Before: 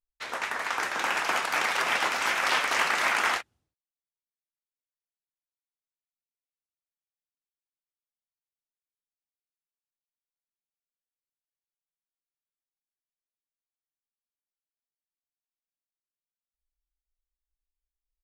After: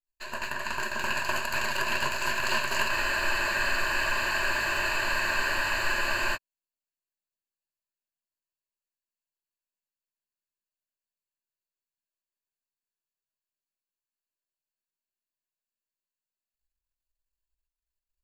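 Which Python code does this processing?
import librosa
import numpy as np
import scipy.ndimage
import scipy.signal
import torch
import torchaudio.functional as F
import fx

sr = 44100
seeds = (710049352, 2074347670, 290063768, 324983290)

y = np.where(x < 0.0, 10.0 ** (-12.0 / 20.0) * x, x)
y = fx.ripple_eq(y, sr, per_octave=1.4, db=16)
y = fx.spec_freeze(y, sr, seeds[0], at_s=2.93, hold_s=3.43)
y = y * 10.0 ** (-2.0 / 20.0)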